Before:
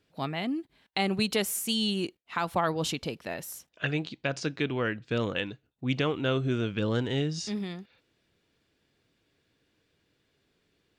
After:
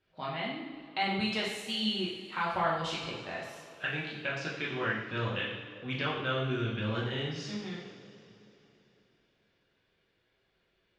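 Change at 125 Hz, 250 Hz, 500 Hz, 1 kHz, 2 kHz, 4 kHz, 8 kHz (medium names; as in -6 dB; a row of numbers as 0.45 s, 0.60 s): -4.5 dB, -6.0 dB, -5.0 dB, 0.0 dB, +0.5 dB, -1.5 dB, -13.0 dB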